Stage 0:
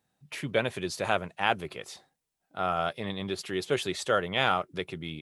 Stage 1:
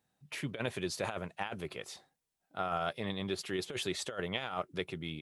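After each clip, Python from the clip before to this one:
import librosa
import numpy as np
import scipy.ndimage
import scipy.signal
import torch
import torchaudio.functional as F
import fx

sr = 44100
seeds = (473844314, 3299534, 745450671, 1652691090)

y = fx.over_compress(x, sr, threshold_db=-29.0, ratio=-0.5)
y = y * 10.0 ** (-5.0 / 20.0)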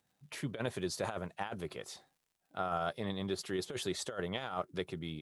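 y = fx.dynamic_eq(x, sr, hz=2500.0, q=1.7, threshold_db=-54.0, ratio=4.0, max_db=-7)
y = fx.dmg_crackle(y, sr, seeds[0], per_s=110.0, level_db=-63.0)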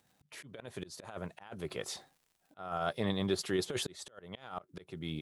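y = fx.rider(x, sr, range_db=3, speed_s=2.0)
y = fx.auto_swell(y, sr, attack_ms=481.0)
y = y * 10.0 ** (5.0 / 20.0)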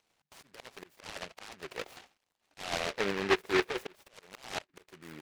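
y = fx.auto_wah(x, sr, base_hz=410.0, top_hz=1100.0, q=2.8, full_db=-29.0, direction='down')
y = fx.noise_mod_delay(y, sr, seeds[1], noise_hz=1600.0, depth_ms=0.27)
y = y * 10.0 ** (7.5 / 20.0)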